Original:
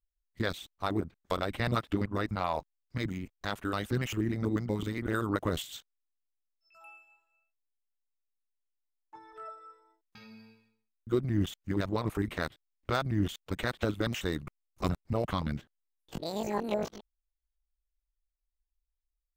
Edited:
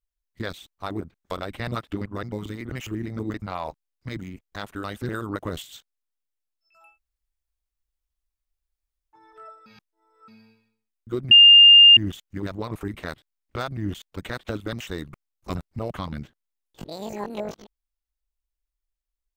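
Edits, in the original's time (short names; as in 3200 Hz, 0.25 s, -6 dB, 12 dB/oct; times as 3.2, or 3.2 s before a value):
2.23–3.98 swap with 4.6–5.09
6.91–9.16 room tone, crossfade 0.16 s
9.66–10.28 reverse
11.31 add tone 2810 Hz -7 dBFS 0.66 s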